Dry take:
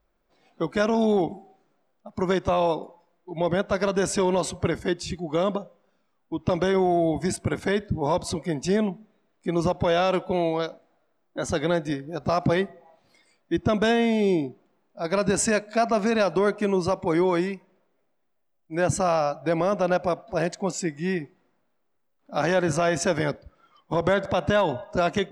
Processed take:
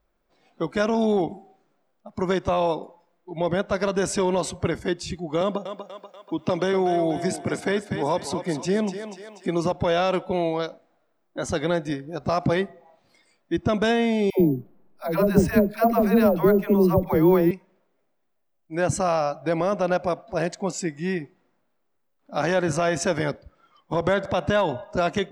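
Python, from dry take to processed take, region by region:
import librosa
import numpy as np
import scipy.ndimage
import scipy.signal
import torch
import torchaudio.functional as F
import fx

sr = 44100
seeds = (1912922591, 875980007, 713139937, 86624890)

y = fx.chain(x, sr, fx.highpass(hz=140.0, slope=12),
    fx.echo_thinned(ms=242, feedback_pct=43, hz=440.0, wet_db=-9.0),
    fx.band_squash(depth_pct=40), at=(5.41, 9.72))
y = fx.chain(y, sr, fx.tilt_eq(slope=-3.0),
    fx.dispersion(late='lows', ms=104.0, hz=570.0),
    fx.resample_bad(factor=3, down='filtered', up='hold'), at=(14.3, 17.51))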